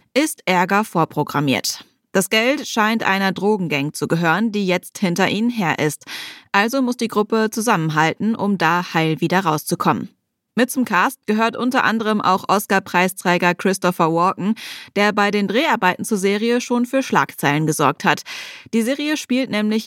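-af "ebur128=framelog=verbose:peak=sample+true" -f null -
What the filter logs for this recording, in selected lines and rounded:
Integrated loudness:
  I:         -18.5 LUFS
  Threshold: -28.6 LUFS
Loudness range:
  LRA:         1.6 LU
  Threshold: -38.5 LUFS
  LRA low:   -19.3 LUFS
  LRA high:  -17.7 LUFS
Sample peak:
  Peak:       -1.2 dBFS
True peak:
  Peak:       -1.1 dBFS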